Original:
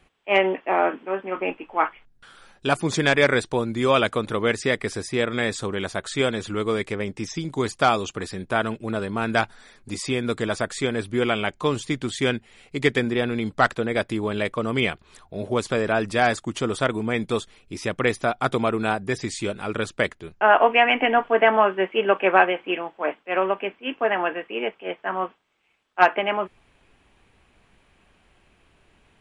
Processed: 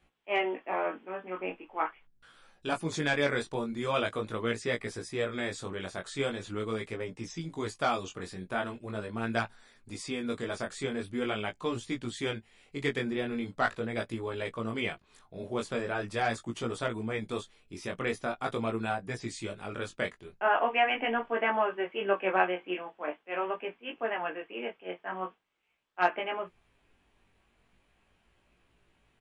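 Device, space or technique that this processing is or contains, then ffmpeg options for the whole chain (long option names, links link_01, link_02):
double-tracked vocal: -filter_complex "[0:a]asplit=2[link_01][link_02];[link_02]adelay=17,volume=-13dB[link_03];[link_01][link_03]amix=inputs=2:normalize=0,flanger=delay=17:depth=5.1:speed=0.42,volume=-7dB"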